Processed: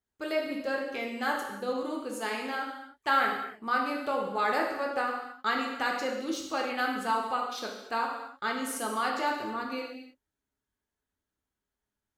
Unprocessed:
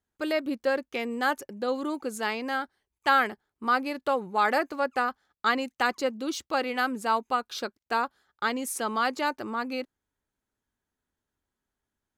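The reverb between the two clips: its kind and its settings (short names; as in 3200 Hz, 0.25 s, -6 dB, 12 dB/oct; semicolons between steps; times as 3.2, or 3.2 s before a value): non-linear reverb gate 0.34 s falling, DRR -1 dB; gain -6 dB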